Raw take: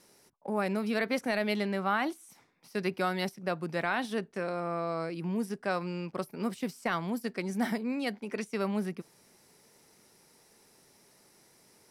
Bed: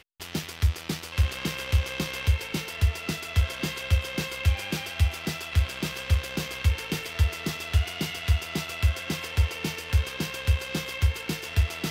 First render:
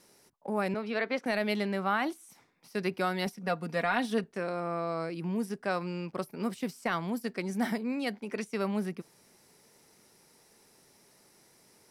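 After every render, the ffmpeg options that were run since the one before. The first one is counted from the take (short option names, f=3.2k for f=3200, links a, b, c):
-filter_complex "[0:a]asettb=1/sr,asplit=3[a][b][c];[a]atrim=end=0.744[d];[b]atrim=start=0.74:end=1.26,asetpts=PTS-STARTPTS,afade=t=in:d=0.004:c=qsin,afade=t=out:st=0.516:d=0.004:c=qsin,acrossover=split=240 4900:gain=0.178 1 0.112[e][f][g];[e][f][g]amix=inputs=3:normalize=0[h];[c]atrim=start=1.256[i];[d][h]acrossfade=d=0.004:c1=hsin:c2=qsin[j];[j][i]acrossfade=d=0.004:c1=qsin:c2=hsin,asettb=1/sr,asplit=3[k][l][m];[k]atrim=end=3.264[n];[l]atrim=start=3.26:end=4.24,asetpts=PTS-STARTPTS,afade=t=in:d=0.004:c=qsin,afade=t=out:st=0.976:d=0.004:c=qsin,aecho=1:1:4.2:0.64,atrim=end_sample=43218[o];[m]atrim=start=4.236[p];[n][o]acrossfade=d=0.004:c1=hsin:c2=qsin[q];[q][p]acrossfade=d=0.004:c1=qsin:c2=hsin"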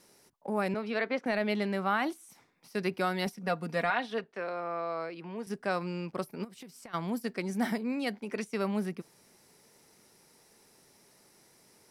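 -filter_complex "[0:a]asettb=1/sr,asplit=3[a][b][c];[a]atrim=end=1.074[d];[b]atrim=start=1.07:end=1.62,asetpts=PTS-STARTPTS,afade=t=in:d=0.004:c=qsin,afade=t=out:st=0.546:d=0.004:c=qsin,aemphasis=mode=reproduction:type=cd[e];[c]atrim=start=1.616[f];[d][e]acrossfade=d=0.004:c1=hsin:c2=qsin[g];[g][f]acrossfade=d=0.004:c1=qsin:c2=hsin,asettb=1/sr,asplit=3[h][i][j];[h]atrim=end=3.904[k];[i]atrim=start=3.9:end=5.47,asetpts=PTS-STARTPTS,afade=t=in:d=0.004:c=qsin,afade=t=out:st=1.566:d=0.004:c=qsin,acrossover=split=390 4700:gain=0.251 1 0.126[l][m][n];[l][m][n]amix=inputs=3:normalize=0[o];[j]atrim=start=5.466[p];[k][o]acrossfade=d=0.004:c1=hsin:c2=qsin[q];[q][p]acrossfade=d=0.004:c1=qsin:c2=hsin,asplit=3[r][s][t];[r]afade=t=out:st=6.43:d=0.02[u];[s]acompressor=threshold=-44dB:ratio=12:attack=3.2:release=140:knee=1:detection=peak,afade=t=in:st=6.43:d=0.02,afade=t=out:st=6.93:d=0.02[v];[t]afade=t=in:st=6.93:d=0.02[w];[u][v][w]amix=inputs=3:normalize=0"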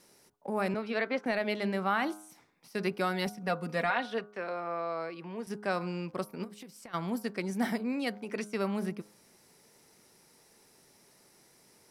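-af "bandreject=f=104:t=h:w=4,bandreject=f=208:t=h:w=4,bandreject=f=312:t=h:w=4,bandreject=f=416:t=h:w=4,bandreject=f=520:t=h:w=4,bandreject=f=624:t=h:w=4,bandreject=f=728:t=h:w=4,bandreject=f=832:t=h:w=4,bandreject=f=936:t=h:w=4,bandreject=f=1.04k:t=h:w=4,bandreject=f=1.144k:t=h:w=4,bandreject=f=1.248k:t=h:w=4,bandreject=f=1.352k:t=h:w=4,bandreject=f=1.456k:t=h:w=4,bandreject=f=1.56k:t=h:w=4"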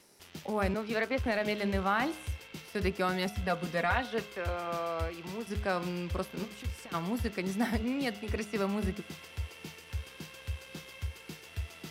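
-filter_complex "[1:a]volume=-14.5dB[a];[0:a][a]amix=inputs=2:normalize=0"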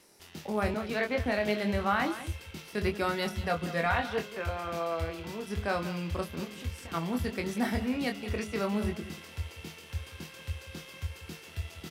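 -filter_complex "[0:a]asplit=2[a][b];[b]adelay=24,volume=-5.5dB[c];[a][c]amix=inputs=2:normalize=0,aecho=1:1:187:0.2"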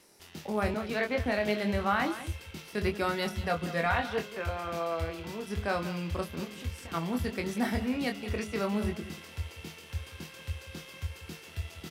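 -af anull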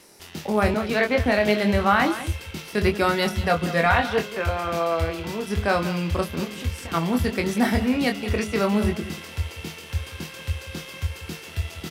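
-af "volume=9dB"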